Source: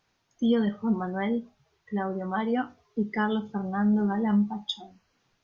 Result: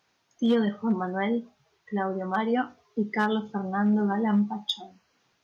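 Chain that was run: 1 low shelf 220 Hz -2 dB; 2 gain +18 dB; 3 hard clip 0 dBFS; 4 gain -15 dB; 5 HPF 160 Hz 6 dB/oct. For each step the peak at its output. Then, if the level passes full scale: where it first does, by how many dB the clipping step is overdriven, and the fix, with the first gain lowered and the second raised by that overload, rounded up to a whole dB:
-14.5, +3.5, 0.0, -15.0, -13.0 dBFS; step 2, 3.5 dB; step 2 +14 dB, step 4 -11 dB

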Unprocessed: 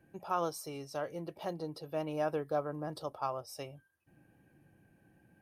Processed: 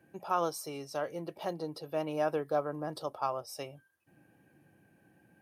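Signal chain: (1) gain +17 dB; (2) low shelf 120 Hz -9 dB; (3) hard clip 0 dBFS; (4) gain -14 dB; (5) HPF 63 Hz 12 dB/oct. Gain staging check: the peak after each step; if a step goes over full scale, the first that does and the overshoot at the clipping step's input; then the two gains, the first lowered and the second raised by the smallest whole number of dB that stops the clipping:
-2.5, -3.0, -3.0, -17.0, -17.0 dBFS; no overload

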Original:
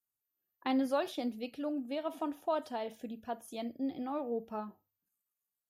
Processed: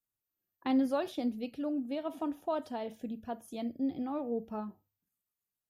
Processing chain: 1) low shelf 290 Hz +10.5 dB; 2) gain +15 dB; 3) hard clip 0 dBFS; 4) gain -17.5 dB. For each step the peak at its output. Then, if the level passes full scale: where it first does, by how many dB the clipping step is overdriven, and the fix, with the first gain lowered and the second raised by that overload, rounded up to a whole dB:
-17.5, -2.5, -2.5, -20.0 dBFS; no overload

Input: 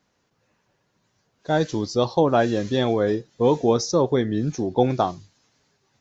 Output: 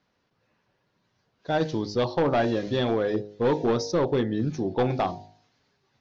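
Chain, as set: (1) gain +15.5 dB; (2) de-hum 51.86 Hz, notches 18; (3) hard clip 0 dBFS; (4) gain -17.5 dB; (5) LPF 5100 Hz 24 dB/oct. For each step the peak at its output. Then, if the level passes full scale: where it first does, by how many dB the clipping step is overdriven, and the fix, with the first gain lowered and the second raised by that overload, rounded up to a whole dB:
+10.5, +10.0, 0.0, -17.5, -16.5 dBFS; step 1, 10.0 dB; step 1 +5.5 dB, step 4 -7.5 dB

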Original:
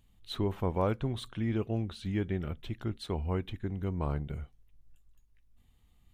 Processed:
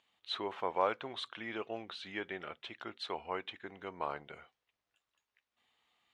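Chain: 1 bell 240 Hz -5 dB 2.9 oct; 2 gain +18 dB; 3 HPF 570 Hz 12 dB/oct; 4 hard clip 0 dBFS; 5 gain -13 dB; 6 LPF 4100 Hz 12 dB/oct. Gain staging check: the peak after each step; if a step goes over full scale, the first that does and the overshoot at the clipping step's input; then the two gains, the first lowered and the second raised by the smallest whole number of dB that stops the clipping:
-20.5, -2.5, -3.0, -3.0, -16.0, -16.0 dBFS; no overload

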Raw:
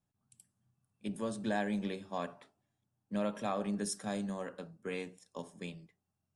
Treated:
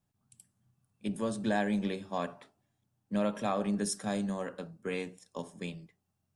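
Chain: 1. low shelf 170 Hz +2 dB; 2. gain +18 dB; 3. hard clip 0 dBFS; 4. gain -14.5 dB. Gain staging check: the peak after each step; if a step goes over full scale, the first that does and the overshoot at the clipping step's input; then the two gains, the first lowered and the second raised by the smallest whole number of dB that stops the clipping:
-21.5, -3.5, -3.5, -18.0 dBFS; no overload

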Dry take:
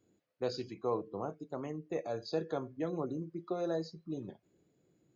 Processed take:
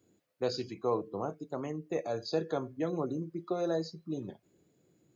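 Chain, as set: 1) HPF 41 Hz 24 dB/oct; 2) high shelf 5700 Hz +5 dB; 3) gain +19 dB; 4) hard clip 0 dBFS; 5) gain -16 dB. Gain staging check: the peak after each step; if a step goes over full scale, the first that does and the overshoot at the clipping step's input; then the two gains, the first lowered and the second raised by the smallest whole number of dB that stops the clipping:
-21.5, -21.5, -2.5, -2.5, -18.5 dBFS; no overload

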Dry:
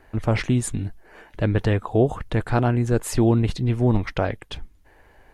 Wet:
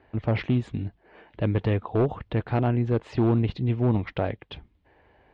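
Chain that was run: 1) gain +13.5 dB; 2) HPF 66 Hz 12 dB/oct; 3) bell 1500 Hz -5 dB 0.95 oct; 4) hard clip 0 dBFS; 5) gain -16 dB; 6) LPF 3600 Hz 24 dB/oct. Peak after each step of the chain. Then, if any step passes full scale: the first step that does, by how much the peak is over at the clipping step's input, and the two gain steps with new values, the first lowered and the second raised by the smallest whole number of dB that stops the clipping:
+6.0, +7.0, +7.0, 0.0, -16.0, -15.5 dBFS; step 1, 7.0 dB; step 1 +6.5 dB, step 5 -9 dB

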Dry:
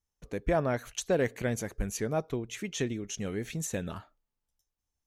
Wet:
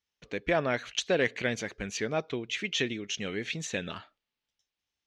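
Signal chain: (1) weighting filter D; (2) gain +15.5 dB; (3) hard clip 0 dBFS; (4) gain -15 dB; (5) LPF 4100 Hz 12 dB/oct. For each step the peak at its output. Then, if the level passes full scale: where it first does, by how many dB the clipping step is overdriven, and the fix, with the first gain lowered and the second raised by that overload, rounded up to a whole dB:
-11.5, +4.0, 0.0, -15.0, -14.5 dBFS; step 2, 4.0 dB; step 2 +11.5 dB, step 4 -11 dB

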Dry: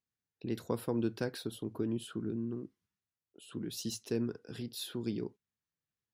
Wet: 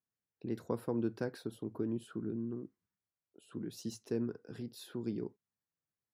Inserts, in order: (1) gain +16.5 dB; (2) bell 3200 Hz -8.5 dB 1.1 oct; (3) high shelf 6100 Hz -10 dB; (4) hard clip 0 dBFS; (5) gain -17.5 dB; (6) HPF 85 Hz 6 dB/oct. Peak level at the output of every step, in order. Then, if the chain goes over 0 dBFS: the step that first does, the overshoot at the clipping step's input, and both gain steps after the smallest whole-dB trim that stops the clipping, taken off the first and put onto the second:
-2.5, -3.0, -3.0, -3.0, -20.5, -21.0 dBFS; no overload

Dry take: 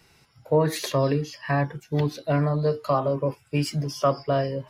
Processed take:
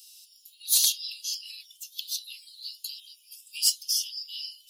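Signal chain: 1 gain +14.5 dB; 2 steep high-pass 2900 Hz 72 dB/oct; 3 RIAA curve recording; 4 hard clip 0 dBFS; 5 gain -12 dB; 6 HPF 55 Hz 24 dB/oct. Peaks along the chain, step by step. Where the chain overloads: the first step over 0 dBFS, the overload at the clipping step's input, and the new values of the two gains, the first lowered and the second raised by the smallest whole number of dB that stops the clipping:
+4.5, -3.5, +6.0, 0.0, -12.0, -12.0 dBFS; step 1, 6.0 dB; step 1 +8.5 dB, step 5 -6 dB

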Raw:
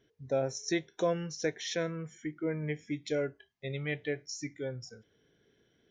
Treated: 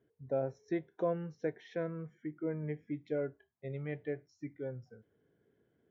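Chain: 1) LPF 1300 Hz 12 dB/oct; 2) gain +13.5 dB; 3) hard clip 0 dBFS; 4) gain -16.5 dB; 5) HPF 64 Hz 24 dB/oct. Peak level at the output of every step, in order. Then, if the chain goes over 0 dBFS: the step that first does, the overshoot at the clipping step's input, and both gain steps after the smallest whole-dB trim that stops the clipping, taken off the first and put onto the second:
-18.5, -5.0, -5.0, -21.5, -22.0 dBFS; no overload

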